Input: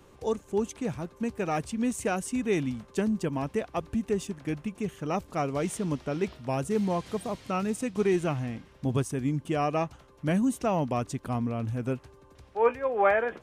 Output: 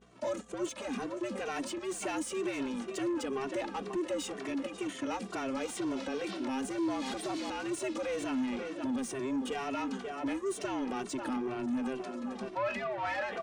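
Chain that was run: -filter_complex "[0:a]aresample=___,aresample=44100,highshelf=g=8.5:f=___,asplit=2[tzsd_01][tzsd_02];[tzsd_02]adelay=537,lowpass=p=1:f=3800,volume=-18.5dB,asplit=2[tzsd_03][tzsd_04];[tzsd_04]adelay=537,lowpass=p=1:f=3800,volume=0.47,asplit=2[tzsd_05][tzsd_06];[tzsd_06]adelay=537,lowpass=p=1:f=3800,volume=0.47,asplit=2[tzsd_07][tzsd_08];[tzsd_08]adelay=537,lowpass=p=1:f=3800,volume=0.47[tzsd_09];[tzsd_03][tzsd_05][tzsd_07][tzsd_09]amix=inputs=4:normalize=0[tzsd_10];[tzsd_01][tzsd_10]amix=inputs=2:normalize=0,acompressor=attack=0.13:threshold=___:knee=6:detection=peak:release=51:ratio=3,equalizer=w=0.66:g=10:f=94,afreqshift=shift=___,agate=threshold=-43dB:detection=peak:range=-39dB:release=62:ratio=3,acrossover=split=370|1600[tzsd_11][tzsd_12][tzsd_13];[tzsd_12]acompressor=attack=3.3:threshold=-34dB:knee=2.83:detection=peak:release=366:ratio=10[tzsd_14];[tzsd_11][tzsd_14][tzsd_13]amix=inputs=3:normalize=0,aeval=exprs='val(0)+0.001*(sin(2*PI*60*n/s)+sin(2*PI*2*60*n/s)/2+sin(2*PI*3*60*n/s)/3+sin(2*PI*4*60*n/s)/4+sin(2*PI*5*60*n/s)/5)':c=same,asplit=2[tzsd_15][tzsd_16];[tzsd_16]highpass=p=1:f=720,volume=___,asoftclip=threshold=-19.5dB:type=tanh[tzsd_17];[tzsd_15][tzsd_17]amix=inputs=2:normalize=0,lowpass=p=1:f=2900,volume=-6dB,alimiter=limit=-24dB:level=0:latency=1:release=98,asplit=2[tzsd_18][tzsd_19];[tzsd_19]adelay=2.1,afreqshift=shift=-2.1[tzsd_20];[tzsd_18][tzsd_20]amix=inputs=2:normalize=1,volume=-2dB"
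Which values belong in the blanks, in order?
22050, 2700, -33dB, 130, 21dB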